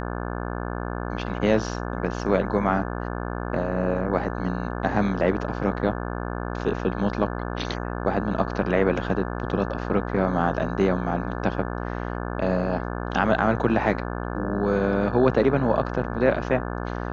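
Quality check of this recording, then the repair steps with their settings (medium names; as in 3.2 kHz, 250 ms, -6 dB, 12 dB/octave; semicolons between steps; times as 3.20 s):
buzz 60 Hz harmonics 29 -30 dBFS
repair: de-hum 60 Hz, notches 29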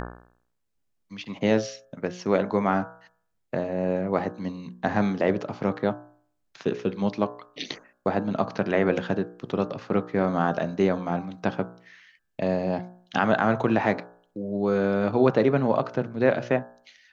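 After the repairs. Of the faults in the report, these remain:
nothing left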